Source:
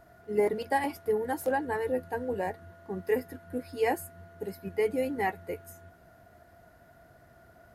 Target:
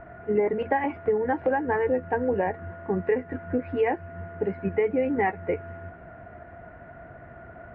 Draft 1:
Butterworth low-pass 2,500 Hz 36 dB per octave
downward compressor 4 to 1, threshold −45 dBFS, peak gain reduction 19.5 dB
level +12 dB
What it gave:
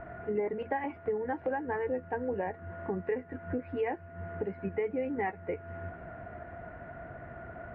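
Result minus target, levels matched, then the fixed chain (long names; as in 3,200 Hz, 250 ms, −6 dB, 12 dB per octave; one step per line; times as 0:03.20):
downward compressor: peak gain reduction +8.5 dB
Butterworth low-pass 2,500 Hz 36 dB per octave
downward compressor 4 to 1, threshold −34 dBFS, peak gain reduction 11 dB
level +12 dB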